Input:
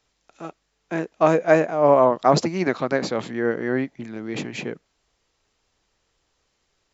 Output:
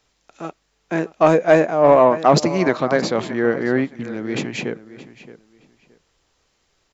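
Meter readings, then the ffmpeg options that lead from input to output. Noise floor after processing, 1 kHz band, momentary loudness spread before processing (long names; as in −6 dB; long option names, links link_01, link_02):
−67 dBFS, +3.5 dB, 18 LU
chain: -filter_complex "[0:a]asplit=2[link_01][link_02];[link_02]adelay=621,lowpass=frequency=4400:poles=1,volume=-16dB,asplit=2[link_03][link_04];[link_04]adelay=621,lowpass=frequency=4400:poles=1,volume=0.22[link_05];[link_01][link_03][link_05]amix=inputs=3:normalize=0,acontrast=42,volume=-1dB"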